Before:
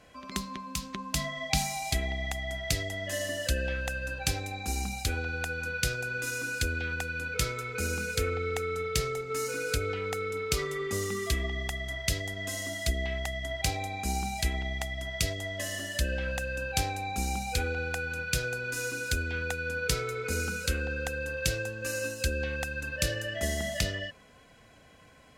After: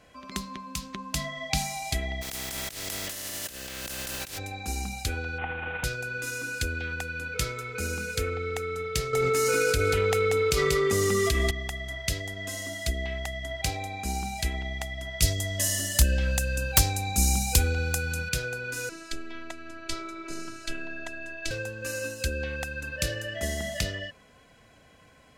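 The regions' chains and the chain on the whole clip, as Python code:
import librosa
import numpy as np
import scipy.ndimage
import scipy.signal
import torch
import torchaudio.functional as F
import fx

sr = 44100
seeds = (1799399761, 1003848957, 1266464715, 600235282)

y = fx.spec_flatten(x, sr, power=0.25, at=(2.21, 4.37), fade=0.02)
y = fx.over_compress(y, sr, threshold_db=-37.0, ratio=-1.0, at=(2.21, 4.37), fade=0.02)
y = fx.peak_eq(y, sr, hz=1000.0, db=-4.0, octaves=0.87, at=(2.21, 4.37), fade=0.02)
y = fx.chain(y, sr, fx.cvsd(bps=16000),
    fx.peak_eq(hz=810.0, db=13.0, octaves=0.27), at=(5.38, 5.84))
y = fx.chain(y, sr, fx.echo_single(ms=186, db=-8.5),
    fx.env_flatten(amount_pct=100), at=(9.13, 11.51))
y = fx.chain(y, sr, fx.bass_treble(bass_db=9, treble_db=14),
    fx.overflow_wrap(gain_db=8.0), at=(15.22, 18.29))
y = fx.chain(y, sr, fx.robotise(hz=330.0),
    fx.air_absorb(metres=54.0), at=(18.89, 21.51))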